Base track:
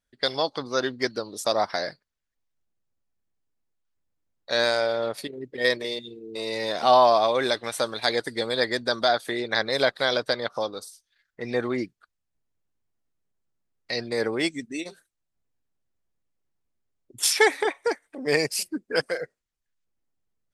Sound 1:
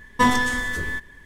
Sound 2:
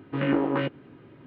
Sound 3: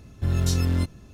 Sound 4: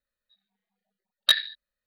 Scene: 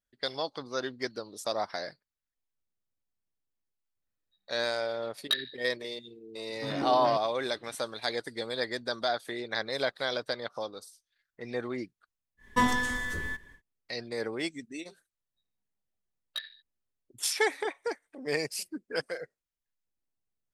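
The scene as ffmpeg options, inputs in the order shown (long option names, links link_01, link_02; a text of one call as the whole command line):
ffmpeg -i bed.wav -i cue0.wav -i cue1.wav -i cue2.wav -i cue3.wav -filter_complex "[4:a]asplit=2[link_01][link_02];[0:a]volume=-8dB[link_03];[link_01]atrim=end=1.86,asetpts=PTS-STARTPTS,volume=-9dB,afade=type=in:duration=0.004:curve=hsin,afade=type=out:start_time=1.856:duration=0.004:curve=hsin,adelay=4020[link_04];[2:a]atrim=end=1.26,asetpts=PTS-STARTPTS,volume=-10dB,afade=type=in:duration=0.004:curve=hsin,afade=type=out:start_time=1.256:duration=0.004:curve=hsin,adelay=6490[link_05];[1:a]atrim=end=1.25,asetpts=PTS-STARTPTS,volume=-7dB,afade=type=in:duration=0.1,afade=type=out:start_time=1.15:duration=0.1,adelay=12370[link_06];[link_02]atrim=end=1.86,asetpts=PTS-STARTPTS,volume=-17.5dB,afade=type=in:duration=0.004:curve=hsin,afade=type=out:start_time=1.856:duration=0.004:curve=hsin,adelay=15070[link_07];[link_03][link_04][link_05][link_06][link_07]amix=inputs=5:normalize=0" out.wav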